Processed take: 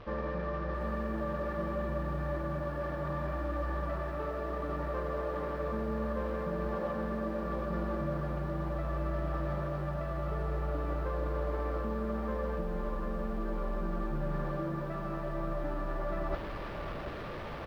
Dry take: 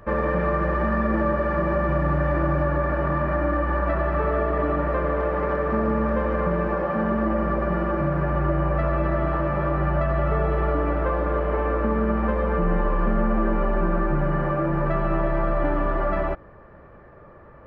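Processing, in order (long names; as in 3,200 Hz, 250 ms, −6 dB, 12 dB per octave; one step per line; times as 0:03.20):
linear delta modulator 32 kbit/s, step −34 dBFS
reversed playback
downward compressor 16 to 1, threshold −31 dBFS, peak gain reduction 15 dB
reversed playback
high-frequency loss of the air 280 metres
double-tracking delay 19 ms −13.5 dB
feedback echo at a low word length 738 ms, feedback 35%, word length 10 bits, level −8.5 dB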